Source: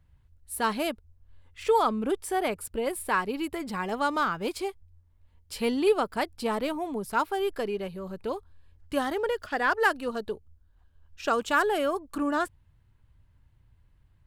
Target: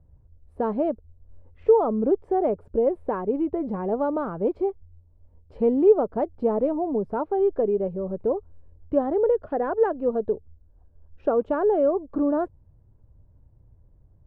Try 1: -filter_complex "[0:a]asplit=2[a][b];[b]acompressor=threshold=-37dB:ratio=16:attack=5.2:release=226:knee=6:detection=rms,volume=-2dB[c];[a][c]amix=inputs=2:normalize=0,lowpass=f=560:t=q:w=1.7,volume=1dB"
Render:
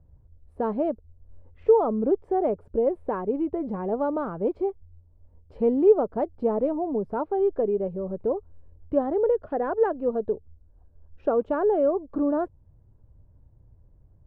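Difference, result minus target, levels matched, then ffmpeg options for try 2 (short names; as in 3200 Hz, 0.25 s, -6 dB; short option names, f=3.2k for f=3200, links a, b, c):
compressor: peak gain reduction +7 dB
-filter_complex "[0:a]asplit=2[a][b];[b]acompressor=threshold=-29.5dB:ratio=16:attack=5.2:release=226:knee=6:detection=rms,volume=-2dB[c];[a][c]amix=inputs=2:normalize=0,lowpass=f=560:t=q:w=1.7,volume=1dB"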